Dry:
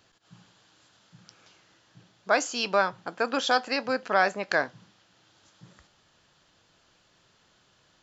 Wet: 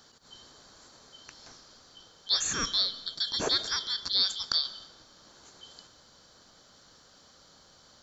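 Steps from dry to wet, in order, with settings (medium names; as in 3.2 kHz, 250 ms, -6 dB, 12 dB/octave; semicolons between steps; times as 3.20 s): four frequency bands reordered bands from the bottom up 3412; in parallel at -3 dB: compressor with a negative ratio -38 dBFS, ratio -1; on the sum: high-order bell 2.6 kHz -8.5 dB 1.1 oct; reverberation RT60 1.3 s, pre-delay 90 ms, DRR 16 dB; trim -1.5 dB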